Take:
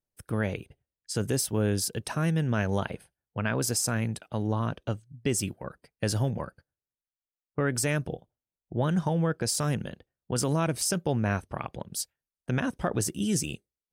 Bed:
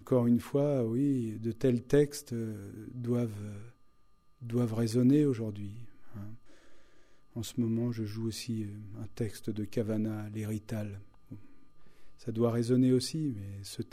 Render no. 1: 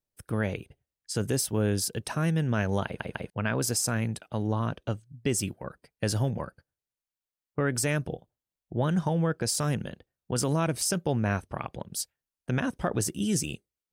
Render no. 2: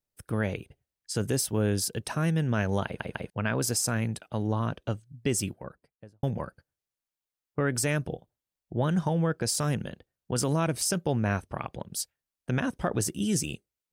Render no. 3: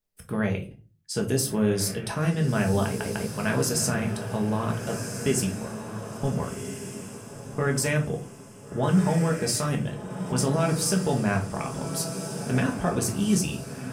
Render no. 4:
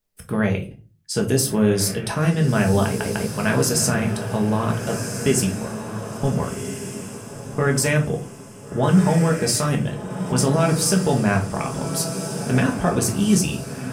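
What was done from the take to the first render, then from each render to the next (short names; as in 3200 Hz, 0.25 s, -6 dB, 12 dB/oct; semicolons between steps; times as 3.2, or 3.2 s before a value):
2.85 stutter in place 0.15 s, 3 plays
5.38–6.23 studio fade out
diffused feedback echo 1.43 s, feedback 41%, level -8.5 dB; shoebox room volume 190 m³, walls furnished, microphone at 1.4 m
gain +5.5 dB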